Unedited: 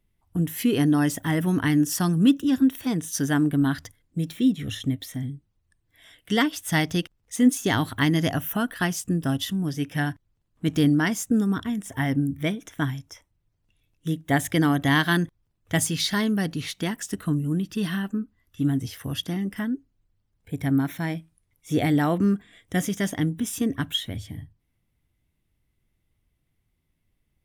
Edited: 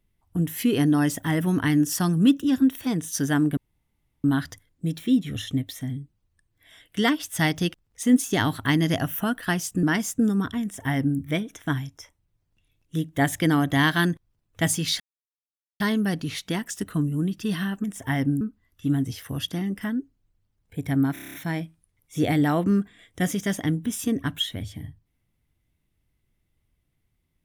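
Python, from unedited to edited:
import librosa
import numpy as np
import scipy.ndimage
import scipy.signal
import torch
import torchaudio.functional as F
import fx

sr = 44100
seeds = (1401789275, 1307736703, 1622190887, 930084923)

y = fx.edit(x, sr, fx.insert_room_tone(at_s=3.57, length_s=0.67),
    fx.cut(start_s=9.16, length_s=1.79),
    fx.duplicate(start_s=11.74, length_s=0.57, to_s=18.16),
    fx.insert_silence(at_s=16.12, length_s=0.8),
    fx.stutter(start_s=20.88, slice_s=0.03, count=8), tone=tone)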